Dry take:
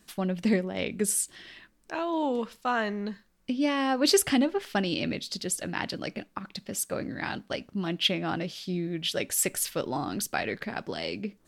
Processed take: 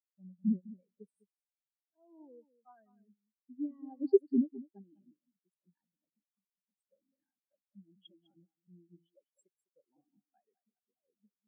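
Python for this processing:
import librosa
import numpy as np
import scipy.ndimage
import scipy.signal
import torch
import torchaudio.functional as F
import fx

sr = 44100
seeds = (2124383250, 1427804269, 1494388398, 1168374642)

y = x + 10.0 ** (-4.5 / 20.0) * np.pad(x, (int(203 * sr / 1000.0), 0))[:len(x)]
y = fx.spectral_expand(y, sr, expansion=4.0)
y = y * 10.0 ** (-5.0 / 20.0)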